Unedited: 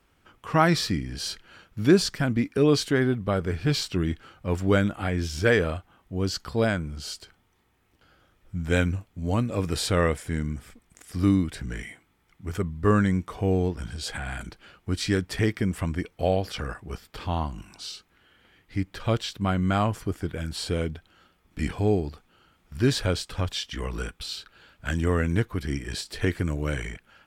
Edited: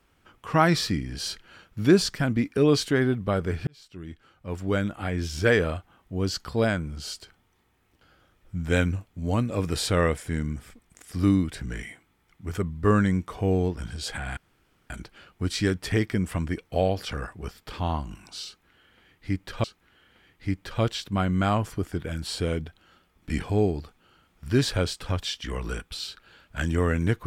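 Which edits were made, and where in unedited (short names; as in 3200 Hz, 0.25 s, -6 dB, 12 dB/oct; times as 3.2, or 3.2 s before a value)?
3.67–5.44 fade in
14.37 insert room tone 0.53 s
17.93–19.11 loop, 2 plays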